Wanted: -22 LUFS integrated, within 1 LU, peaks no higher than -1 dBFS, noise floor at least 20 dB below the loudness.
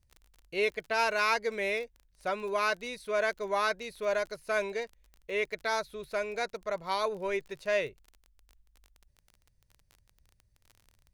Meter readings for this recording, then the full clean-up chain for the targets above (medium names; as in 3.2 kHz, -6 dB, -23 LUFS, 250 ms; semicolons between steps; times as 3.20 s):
tick rate 28 per s; loudness -32.0 LUFS; peak level -15.5 dBFS; loudness target -22.0 LUFS
-> de-click; trim +10 dB